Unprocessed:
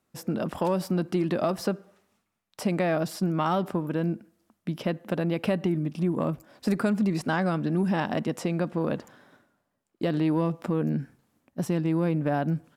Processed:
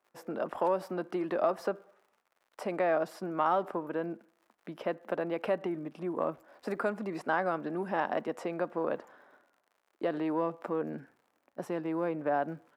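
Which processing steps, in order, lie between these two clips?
crackle 100 per s -46 dBFS; three-band isolator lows -21 dB, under 360 Hz, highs -14 dB, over 2 kHz

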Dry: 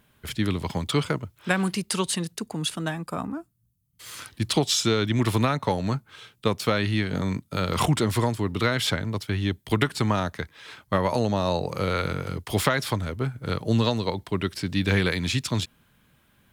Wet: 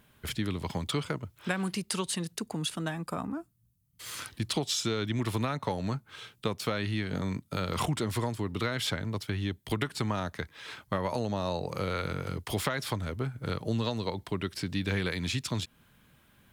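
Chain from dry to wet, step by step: compression 2:1, threshold -33 dBFS, peak gain reduction 9.5 dB

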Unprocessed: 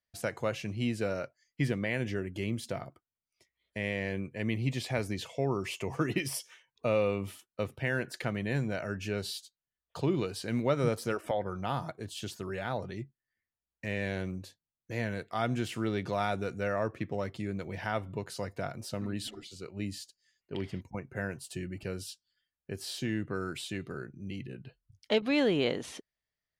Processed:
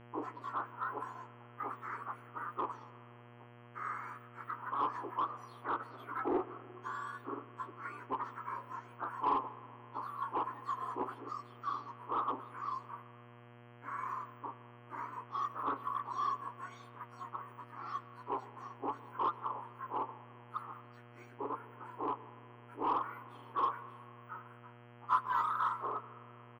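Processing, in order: spectrum inverted on a logarithmic axis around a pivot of 2 kHz; FFT filter 240 Hz 0 dB, 710 Hz -5 dB, 1.1 kHz +11 dB, 2.7 kHz -28 dB, 3.9 kHz -13 dB; flange 0.78 Hz, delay 5.4 ms, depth 3.3 ms, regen +52%; comb 0.9 ms, depth 40%; in parallel at -7 dB: wavefolder -38.5 dBFS; on the sum: mains buzz 120 Hz, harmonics 27, -61 dBFS -4 dB/octave; distance through air 370 m; on a send at -17 dB: reverberation RT60 2.3 s, pre-delay 98 ms; on the sum: trim +6 dB

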